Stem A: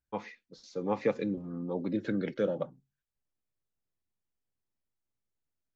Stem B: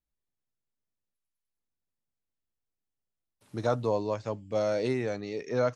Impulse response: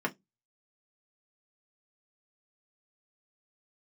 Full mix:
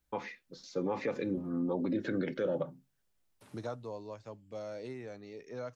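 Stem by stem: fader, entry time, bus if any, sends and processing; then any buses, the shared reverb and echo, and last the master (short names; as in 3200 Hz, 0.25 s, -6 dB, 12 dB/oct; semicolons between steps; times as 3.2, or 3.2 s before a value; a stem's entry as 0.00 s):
+2.0 dB, 0.00 s, send -17 dB, dry
3.36 s -3.5 dB -> 3.79 s -14 dB, 0.00 s, no send, three-band squash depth 40%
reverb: on, RT60 0.15 s, pre-delay 3 ms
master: limiter -24 dBFS, peak gain reduction 10 dB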